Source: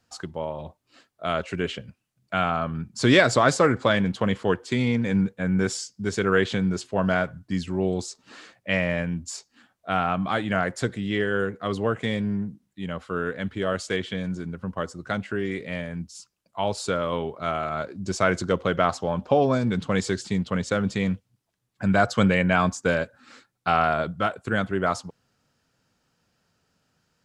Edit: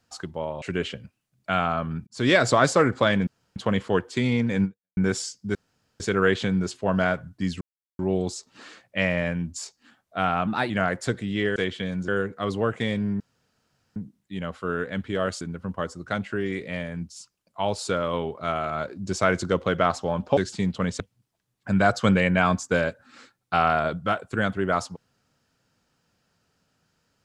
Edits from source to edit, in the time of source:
0:00.62–0:01.46: remove
0:02.91–0:03.37: fade in equal-power
0:04.11: splice in room tone 0.29 s
0:05.19–0:05.52: fade out exponential
0:06.10: splice in room tone 0.45 s
0:07.71: splice in silence 0.38 s
0:10.19–0:10.45: play speed 113%
0:12.43: splice in room tone 0.76 s
0:13.88–0:14.40: move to 0:11.31
0:19.36–0:20.09: remove
0:20.72–0:21.14: remove

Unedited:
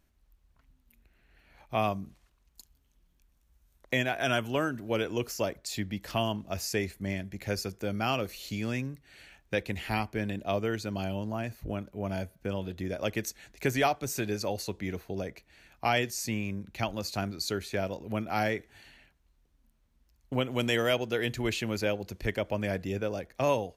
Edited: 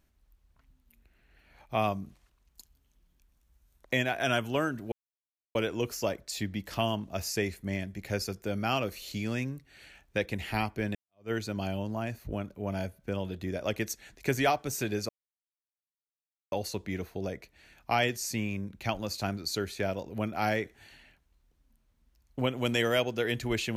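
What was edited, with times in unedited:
0:04.92: splice in silence 0.63 s
0:10.32–0:10.68: fade in exponential
0:14.46: splice in silence 1.43 s

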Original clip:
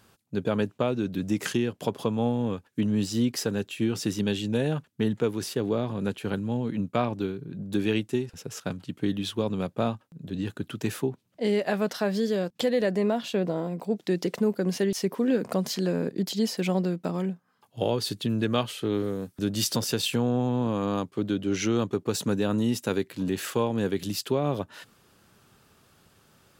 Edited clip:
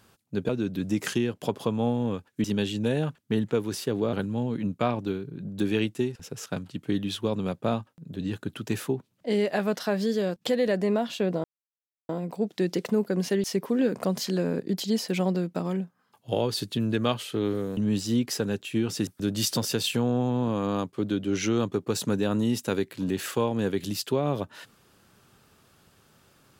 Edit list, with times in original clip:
0:00.49–0:00.88: remove
0:02.83–0:04.13: move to 0:19.26
0:05.82–0:06.27: remove
0:13.58: splice in silence 0.65 s

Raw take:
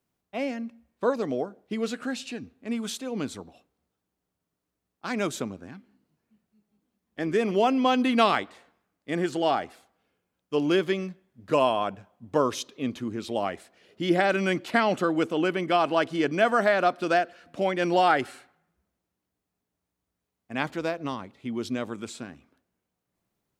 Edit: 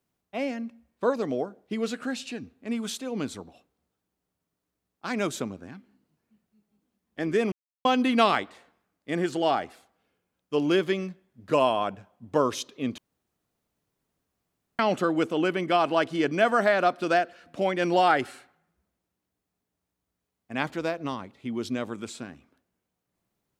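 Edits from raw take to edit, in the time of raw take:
0:07.52–0:07.85: silence
0:12.98–0:14.79: fill with room tone

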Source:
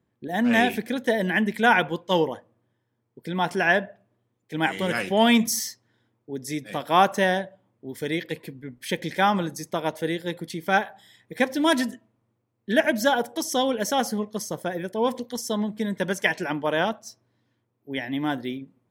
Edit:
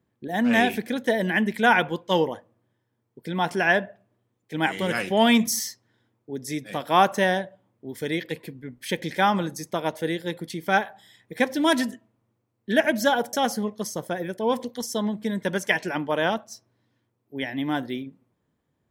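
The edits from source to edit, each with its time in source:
0:13.33–0:13.88: remove

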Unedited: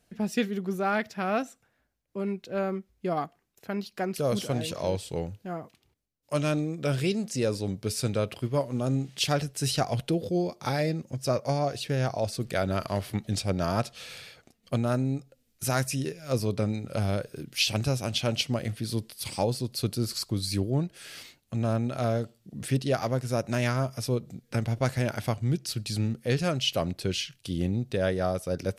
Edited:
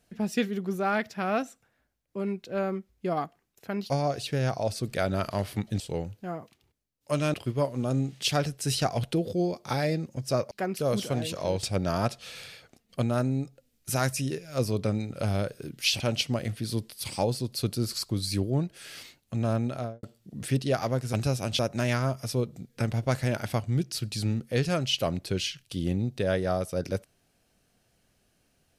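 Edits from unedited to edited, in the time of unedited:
0:03.90–0:05.02: swap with 0:11.47–0:13.37
0:06.56–0:08.30: remove
0:17.74–0:18.20: move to 0:23.33
0:21.87–0:22.23: fade out and dull

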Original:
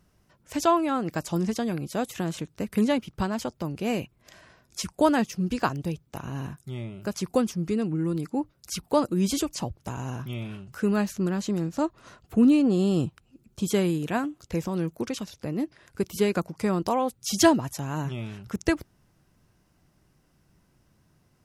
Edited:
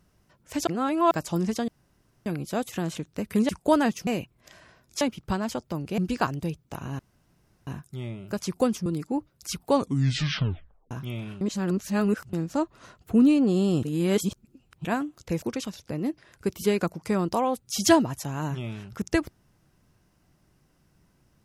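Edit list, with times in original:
0:00.67–0:01.11: reverse
0:01.68: splice in room tone 0.58 s
0:02.91–0:03.88: swap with 0:04.82–0:05.40
0:06.41: splice in room tone 0.68 s
0:07.60–0:08.09: remove
0:08.91: tape stop 1.23 s
0:10.64–0:11.56: reverse
0:13.06–0:14.08: reverse
0:14.65–0:14.96: remove

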